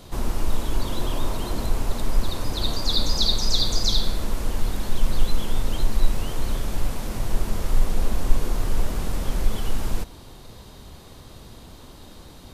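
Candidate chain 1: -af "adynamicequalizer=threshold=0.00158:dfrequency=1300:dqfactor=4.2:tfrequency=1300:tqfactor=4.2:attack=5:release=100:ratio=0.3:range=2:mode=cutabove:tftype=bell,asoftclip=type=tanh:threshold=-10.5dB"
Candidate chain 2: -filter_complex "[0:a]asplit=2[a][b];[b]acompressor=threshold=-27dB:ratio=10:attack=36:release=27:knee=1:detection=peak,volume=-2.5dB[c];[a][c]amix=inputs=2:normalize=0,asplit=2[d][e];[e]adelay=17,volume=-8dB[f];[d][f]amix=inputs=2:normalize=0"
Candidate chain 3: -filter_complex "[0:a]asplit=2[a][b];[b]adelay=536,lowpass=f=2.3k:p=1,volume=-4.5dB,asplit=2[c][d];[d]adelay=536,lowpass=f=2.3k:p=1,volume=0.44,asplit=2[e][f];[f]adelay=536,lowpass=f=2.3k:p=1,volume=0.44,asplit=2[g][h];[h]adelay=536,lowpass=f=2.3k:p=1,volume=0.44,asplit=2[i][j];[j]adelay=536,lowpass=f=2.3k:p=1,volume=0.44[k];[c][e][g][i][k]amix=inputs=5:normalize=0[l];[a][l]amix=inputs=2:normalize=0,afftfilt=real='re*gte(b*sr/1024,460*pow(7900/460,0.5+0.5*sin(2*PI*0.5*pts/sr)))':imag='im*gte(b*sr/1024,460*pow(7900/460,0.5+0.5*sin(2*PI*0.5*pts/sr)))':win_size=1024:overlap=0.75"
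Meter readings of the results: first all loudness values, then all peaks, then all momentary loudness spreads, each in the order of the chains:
-29.0, -24.0, -30.0 LUFS; -10.5, -1.0, -11.0 dBFS; 21, 21, 21 LU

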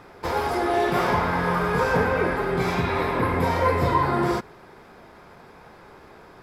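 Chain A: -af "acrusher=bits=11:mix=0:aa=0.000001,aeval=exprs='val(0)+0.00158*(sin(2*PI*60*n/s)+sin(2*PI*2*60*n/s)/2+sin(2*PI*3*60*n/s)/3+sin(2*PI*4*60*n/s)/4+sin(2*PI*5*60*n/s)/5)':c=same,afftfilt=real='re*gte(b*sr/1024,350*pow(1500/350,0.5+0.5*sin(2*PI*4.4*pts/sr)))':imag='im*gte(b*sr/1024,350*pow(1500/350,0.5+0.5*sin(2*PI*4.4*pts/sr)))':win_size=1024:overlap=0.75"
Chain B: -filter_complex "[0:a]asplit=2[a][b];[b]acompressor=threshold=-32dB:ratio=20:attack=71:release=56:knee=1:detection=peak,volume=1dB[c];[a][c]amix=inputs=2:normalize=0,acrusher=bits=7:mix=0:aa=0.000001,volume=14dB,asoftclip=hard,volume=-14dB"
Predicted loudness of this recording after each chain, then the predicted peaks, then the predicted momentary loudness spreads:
-27.0, -20.0 LUFS; -12.0, -14.0 dBFS; 5, 3 LU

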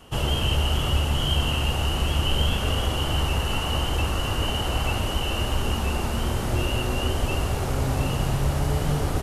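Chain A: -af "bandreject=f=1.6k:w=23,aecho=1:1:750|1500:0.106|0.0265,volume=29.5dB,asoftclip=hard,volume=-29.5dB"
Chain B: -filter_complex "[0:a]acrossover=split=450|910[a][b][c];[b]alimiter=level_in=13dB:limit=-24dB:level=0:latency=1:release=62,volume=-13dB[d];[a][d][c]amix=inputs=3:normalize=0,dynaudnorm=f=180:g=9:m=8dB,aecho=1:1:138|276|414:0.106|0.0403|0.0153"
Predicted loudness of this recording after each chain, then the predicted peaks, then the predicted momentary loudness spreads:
-32.0, -18.5 LUFS; -29.5, -3.0 dBFS; 1, 4 LU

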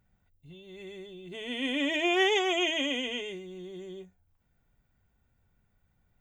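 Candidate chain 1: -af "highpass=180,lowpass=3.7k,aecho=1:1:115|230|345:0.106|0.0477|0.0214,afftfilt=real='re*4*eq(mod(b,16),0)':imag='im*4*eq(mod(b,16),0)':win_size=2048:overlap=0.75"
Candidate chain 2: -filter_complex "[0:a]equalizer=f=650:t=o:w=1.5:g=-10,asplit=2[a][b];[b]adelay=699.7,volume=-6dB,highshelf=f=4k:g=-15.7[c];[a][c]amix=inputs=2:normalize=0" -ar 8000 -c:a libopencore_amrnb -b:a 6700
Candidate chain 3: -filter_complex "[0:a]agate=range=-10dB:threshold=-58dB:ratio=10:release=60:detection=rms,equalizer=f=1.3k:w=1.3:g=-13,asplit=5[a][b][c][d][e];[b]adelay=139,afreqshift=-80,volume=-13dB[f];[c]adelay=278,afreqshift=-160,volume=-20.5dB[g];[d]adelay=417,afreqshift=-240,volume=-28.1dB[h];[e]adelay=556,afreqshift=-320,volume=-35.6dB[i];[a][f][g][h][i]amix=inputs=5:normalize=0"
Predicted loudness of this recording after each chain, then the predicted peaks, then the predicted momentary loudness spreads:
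-28.0, -32.0, -30.5 LUFS; -11.0, -18.5, -17.5 dBFS; 23, 22, 19 LU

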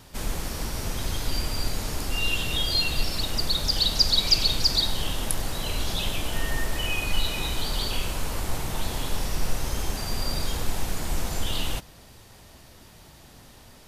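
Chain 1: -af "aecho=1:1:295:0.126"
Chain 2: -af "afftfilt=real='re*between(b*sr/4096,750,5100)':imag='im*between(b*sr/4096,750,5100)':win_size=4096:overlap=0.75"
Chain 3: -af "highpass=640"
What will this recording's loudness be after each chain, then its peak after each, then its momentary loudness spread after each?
-27.0, -28.0, -27.5 LUFS; -6.5, -7.5, -7.0 dBFS; 11, 16, 14 LU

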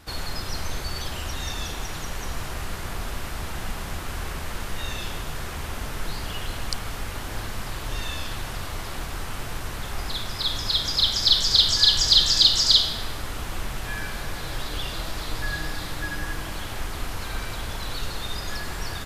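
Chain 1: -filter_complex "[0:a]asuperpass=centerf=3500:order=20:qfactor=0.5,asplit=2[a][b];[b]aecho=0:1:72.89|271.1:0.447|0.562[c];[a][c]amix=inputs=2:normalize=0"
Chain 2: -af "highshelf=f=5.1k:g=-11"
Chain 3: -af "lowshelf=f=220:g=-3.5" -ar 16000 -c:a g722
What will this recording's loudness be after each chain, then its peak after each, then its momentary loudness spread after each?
-21.0, -28.5, -25.5 LUFS; -2.5, -7.0, -3.5 dBFS; 21, 14, 18 LU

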